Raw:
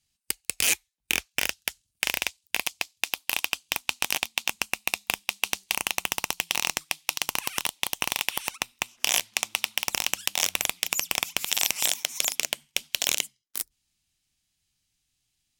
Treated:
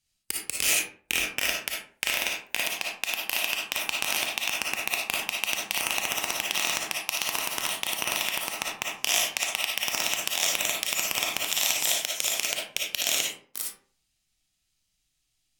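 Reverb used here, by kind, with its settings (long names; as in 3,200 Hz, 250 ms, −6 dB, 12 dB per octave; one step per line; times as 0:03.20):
comb and all-pass reverb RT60 0.48 s, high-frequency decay 0.55×, pre-delay 15 ms, DRR −3 dB
level −3.5 dB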